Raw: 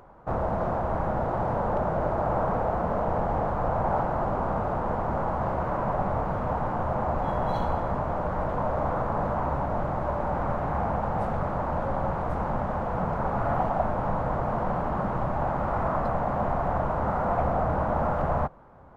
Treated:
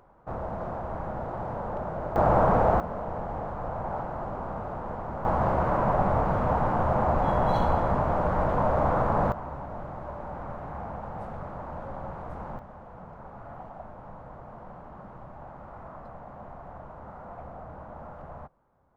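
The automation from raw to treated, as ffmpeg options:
ffmpeg -i in.wav -af "asetnsamples=nb_out_samples=441:pad=0,asendcmd='2.16 volume volume 5dB;2.8 volume volume -7dB;5.25 volume volume 3dB;9.32 volume volume -9.5dB;12.59 volume volume -17dB',volume=-6.5dB" out.wav

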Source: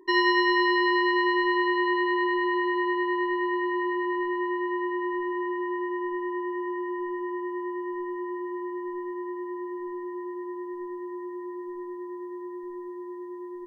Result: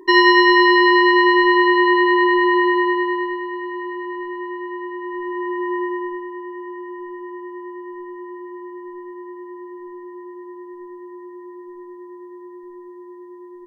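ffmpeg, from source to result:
ffmpeg -i in.wav -af "volume=18dB,afade=type=out:start_time=2.65:duration=0.79:silence=0.298538,afade=type=in:start_time=5.02:duration=0.77:silence=0.398107,afade=type=out:start_time=5.79:duration=0.49:silence=0.375837" out.wav

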